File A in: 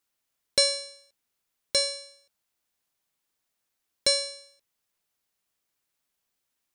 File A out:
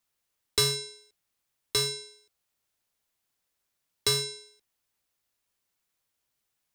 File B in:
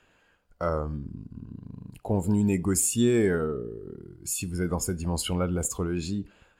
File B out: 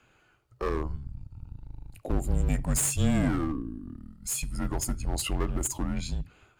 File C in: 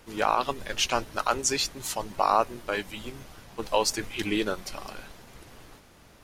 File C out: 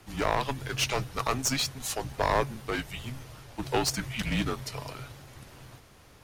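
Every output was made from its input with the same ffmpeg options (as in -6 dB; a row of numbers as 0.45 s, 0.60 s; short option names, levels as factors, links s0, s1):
-af "aeval=exprs='clip(val(0),-1,0.0422)':c=same,afreqshift=-140"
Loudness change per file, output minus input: -2.5 LU, -3.0 LU, -2.5 LU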